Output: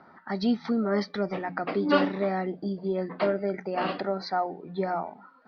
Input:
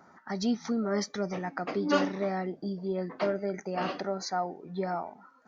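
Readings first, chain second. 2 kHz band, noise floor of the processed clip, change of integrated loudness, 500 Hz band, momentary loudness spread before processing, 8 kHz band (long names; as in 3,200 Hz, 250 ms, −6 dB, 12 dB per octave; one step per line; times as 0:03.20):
+3.5 dB, −55 dBFS, +3.5 dB, +3.5 dB, 8 LU, can't be measured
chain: Butterworth low-pass 4,600 Hz 48 dB per octave
mains-hum notches 60/120/180 Hz
level +3.5 dB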